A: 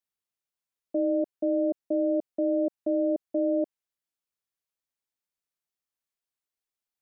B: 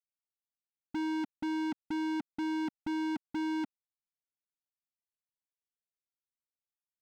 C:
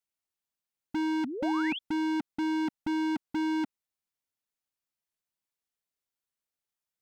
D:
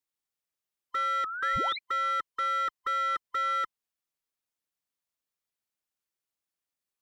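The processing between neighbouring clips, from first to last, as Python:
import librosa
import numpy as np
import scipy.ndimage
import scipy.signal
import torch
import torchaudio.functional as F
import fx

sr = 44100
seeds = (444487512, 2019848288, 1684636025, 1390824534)

y1 = scipy.signal.sosfilt(scipy.signal.cheby2(4, 40, 540.0, 'lowpass', fs=sr, output='sos'), x)
y1 = fx.leveller(y1, sr, passes=5)
y2 = fx.spec_paint(y1, sr, seeds[0], shape='rise', start_s=1.24, length_s=0.55, low_hz=220.0, high_hz=3500.0, level_db=-40.0)
y2 = y2 * 10.0 ** (4.0 / 20.0)
y3 = fx.band_swap(y2, sr, width_hz=1000)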